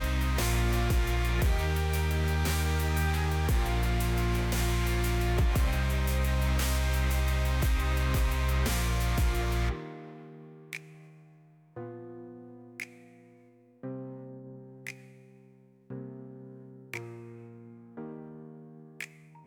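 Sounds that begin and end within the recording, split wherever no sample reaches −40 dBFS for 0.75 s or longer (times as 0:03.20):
0:11.76–0:12.84
0:13.83–0:14.92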